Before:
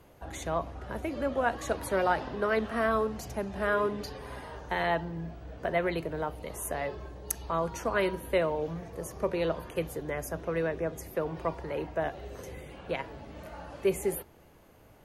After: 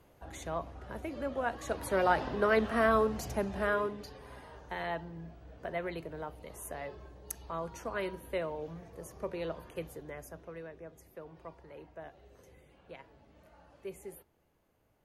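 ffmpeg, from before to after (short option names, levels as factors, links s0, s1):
-af "volume=1.12,afade=t=in:st=1.62:d=0.65:silence=0.473151,afade=t=out:st=3.42:d=0.55:silence=0.354813,afade=t=out:st=9.82:d=0.83:silence=0.398107"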